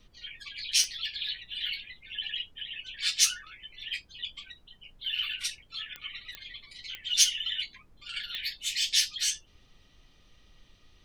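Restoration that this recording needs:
click removal
noise reduction from a noise print 20 dB

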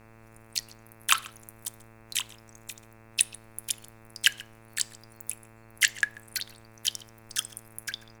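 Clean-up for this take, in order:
hum removal 112 Hz, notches 24
downward expander −46 dBFS, range −21 dB
echo removal 137 ms −22.5 dB

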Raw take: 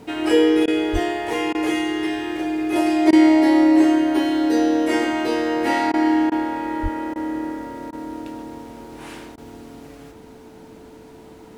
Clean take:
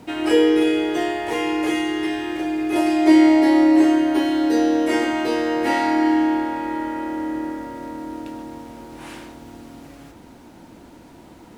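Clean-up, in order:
notch filter 440 Hz, Q 30
high-pass at the plosives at 0:00.92/0:06.82
repair the gap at 0:00.66/0:01.53/0:03.11/0:05.92/0:06.30/0:07.14/0:07.91/0:09.36, 16 ms

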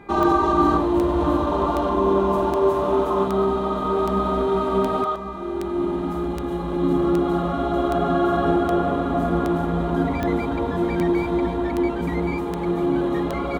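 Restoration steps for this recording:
click removal
hum removal 401.7 Hz, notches 6
echo removal 1,086 ms −12 dB

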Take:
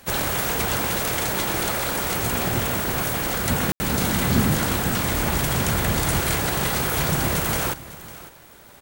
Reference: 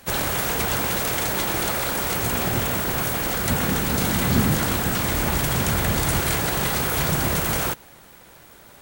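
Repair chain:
ambience match 0:03.72–0:03.80
echo removal 552 ms −17 dB

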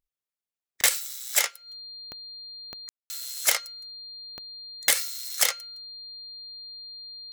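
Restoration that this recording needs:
click removal
notch filter 4,200 Hz, Q 30
ambience match 0:02.89–0:03.10

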